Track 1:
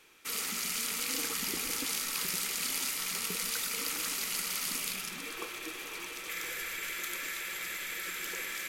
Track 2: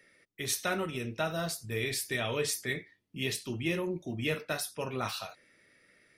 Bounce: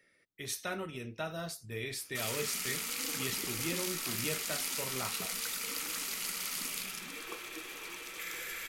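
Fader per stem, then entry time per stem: -3.0 dB, -6.0 dB; 1.90 s, 0.00 s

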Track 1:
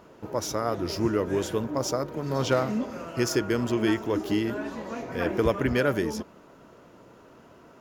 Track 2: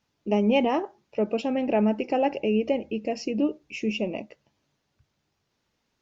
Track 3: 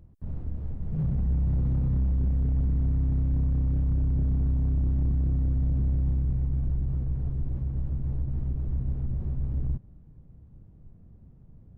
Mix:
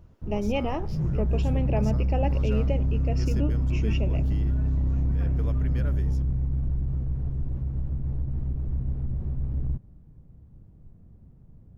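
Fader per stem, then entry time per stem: -17.0 dB, -6.0 dB, +0.5 dB; 0.00 s, 0.00 s, 0.00 s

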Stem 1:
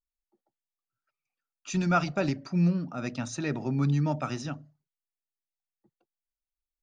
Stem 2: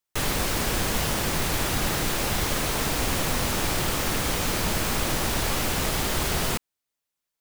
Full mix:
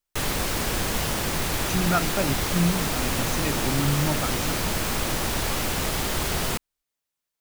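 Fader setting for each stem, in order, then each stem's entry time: +1.0 dB, -0.5 dB; 0.00 s, 0.00 s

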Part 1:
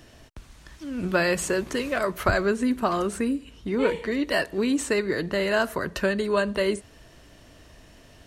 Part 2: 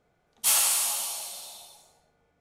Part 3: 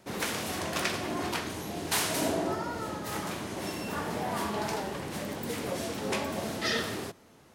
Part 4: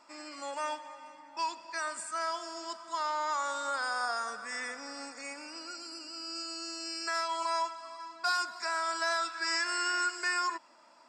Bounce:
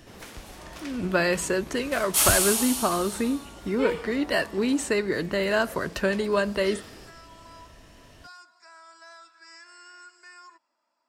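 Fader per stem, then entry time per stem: -0.5 dB, +1.0 dB, -12.0 dB, -17.5 dB; 0.00 s, 1.70 s, 0.00 s, 0.00 s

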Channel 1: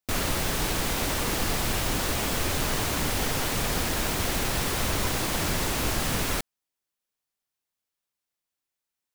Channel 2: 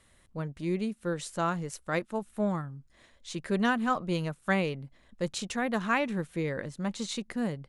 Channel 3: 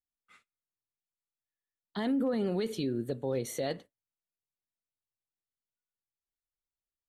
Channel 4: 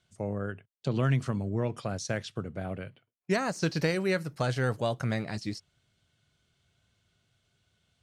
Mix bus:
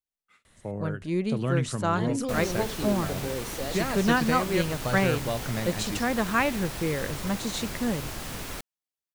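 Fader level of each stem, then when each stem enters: -9.0 dB, +3.0 dB, -1.5 dB, -1.0 dB; 2.20 s, 0.45 s, 0.00 s, 0.45 s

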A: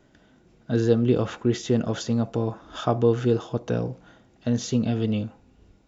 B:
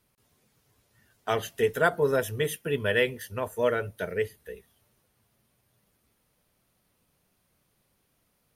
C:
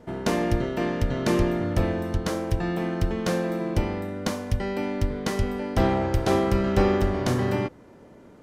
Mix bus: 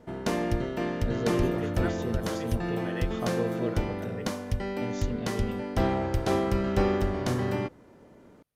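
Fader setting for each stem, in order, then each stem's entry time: -12.0 dB, -15.0 dB, -4.0 dB; 0.35 s, 0.00 s, 0.00 s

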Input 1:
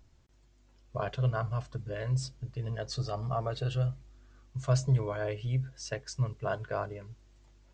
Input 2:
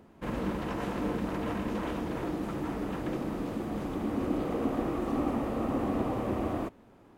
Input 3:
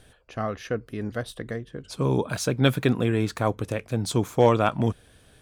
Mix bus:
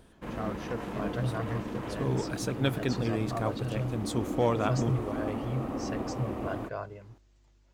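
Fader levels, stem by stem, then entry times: -3.5 dB, -4.0 dB, -8.0 dB; 0.00 s, 0.00 s, 0.00 s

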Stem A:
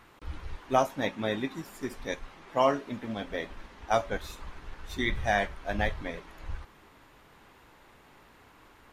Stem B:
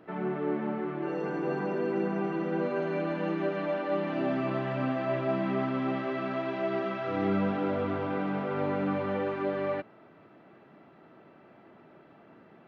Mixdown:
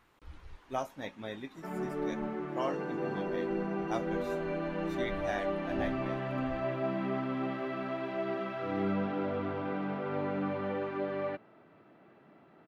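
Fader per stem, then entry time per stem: -10.5 dB, -4.0 dB; 0.00 s, 1.55 s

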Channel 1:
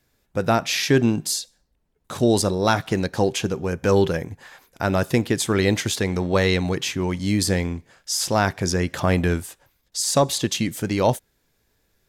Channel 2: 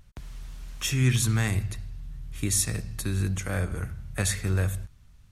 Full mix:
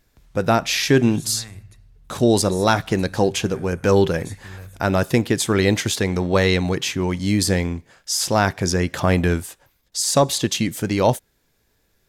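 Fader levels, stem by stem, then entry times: +2.0 dB, -13.0 dB; 0.00 s, 0.00 s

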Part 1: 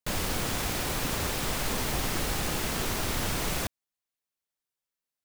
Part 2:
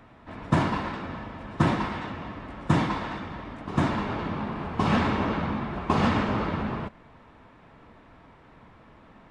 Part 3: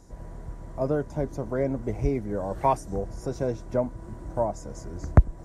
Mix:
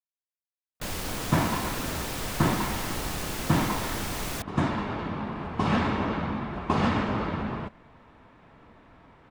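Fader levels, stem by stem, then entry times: -3.0 dB, -1.5 dB, mute; 0.75 s, 0.80 s, mute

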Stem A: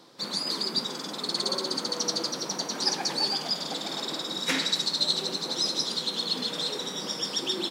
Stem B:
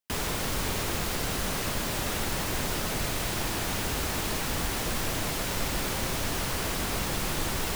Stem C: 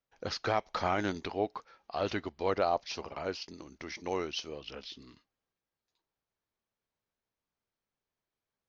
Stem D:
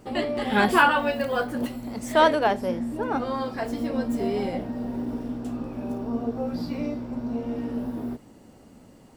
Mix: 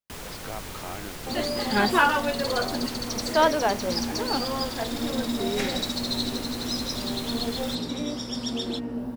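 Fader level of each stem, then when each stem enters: -4.5 dB, -8.0 dB, -8.0 dB, -2.0 dB; 1.10 s, 0.00 s, 0.00 s, 1.20 s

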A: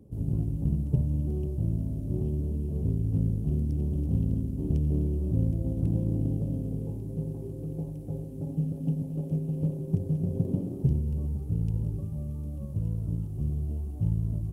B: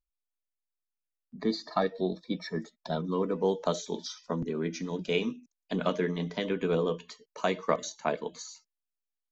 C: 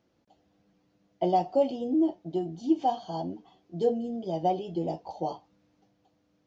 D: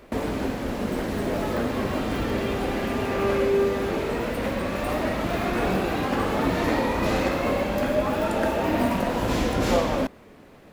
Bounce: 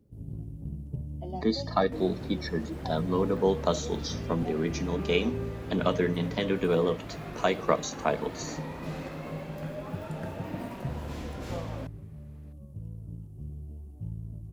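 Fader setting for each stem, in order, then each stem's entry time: -10.5 dB, +2.5 dB, -16.0 dB, -16.0 dB; 0.00 s, 0.00 s, 0.00 s, 1.80 s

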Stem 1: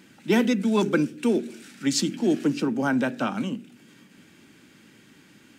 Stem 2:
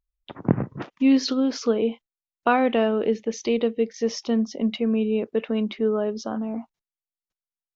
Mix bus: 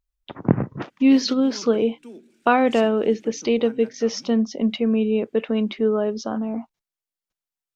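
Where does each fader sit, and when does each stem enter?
-19.0 dB, +2.5 dB; 0.80 s, 0.00 s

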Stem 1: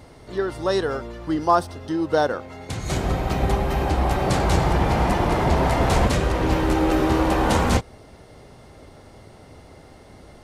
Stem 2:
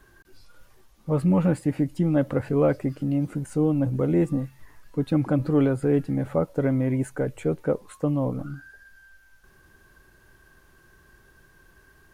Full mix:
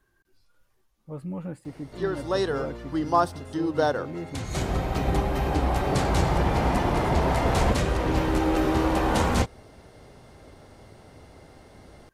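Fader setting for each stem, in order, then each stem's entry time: -3.5 dB, -13.5 dB; 1.65 s, 0.00 s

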